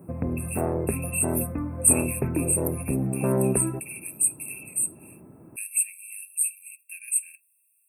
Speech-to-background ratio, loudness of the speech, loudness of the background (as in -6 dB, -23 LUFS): 1.5 dB, -26.5 LUFS, -28.0 LUFS